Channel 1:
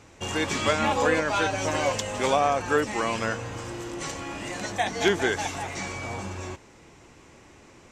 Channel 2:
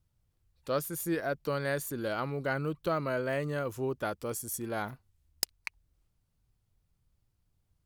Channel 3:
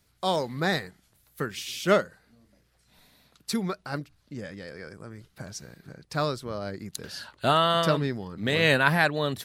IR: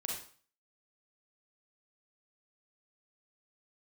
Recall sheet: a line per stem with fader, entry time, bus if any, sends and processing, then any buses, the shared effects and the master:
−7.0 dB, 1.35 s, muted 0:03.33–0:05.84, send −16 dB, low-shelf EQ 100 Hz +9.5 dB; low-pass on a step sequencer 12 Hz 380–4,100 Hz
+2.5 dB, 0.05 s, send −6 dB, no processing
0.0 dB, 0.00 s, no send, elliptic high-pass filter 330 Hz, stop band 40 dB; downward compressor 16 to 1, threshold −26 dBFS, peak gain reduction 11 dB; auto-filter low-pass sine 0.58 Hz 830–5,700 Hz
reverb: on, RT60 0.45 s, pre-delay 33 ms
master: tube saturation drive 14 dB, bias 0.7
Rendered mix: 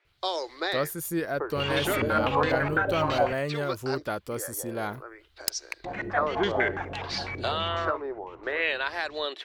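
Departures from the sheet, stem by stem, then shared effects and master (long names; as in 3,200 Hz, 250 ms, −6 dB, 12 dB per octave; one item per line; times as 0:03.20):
stem 2: send off
master: missing tube saturation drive 14 dB, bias 0.7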